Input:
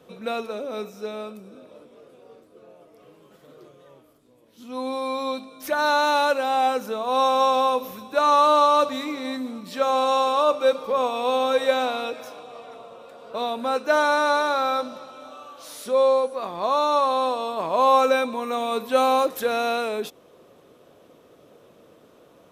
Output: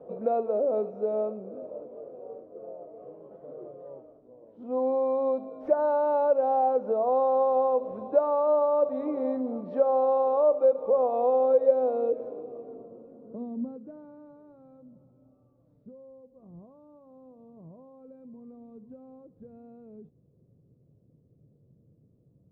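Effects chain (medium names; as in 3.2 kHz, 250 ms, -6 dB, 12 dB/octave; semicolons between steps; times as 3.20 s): peaking EQ 480 Hz +3.5 dB 1.1 oct; compression 2.5:1, threshold -28 dBFS, peak gain reduction 11.5 dB; low-pass sweep 660 Hz -> 130 Hz, 11.35–14.61 s; trim -1 dB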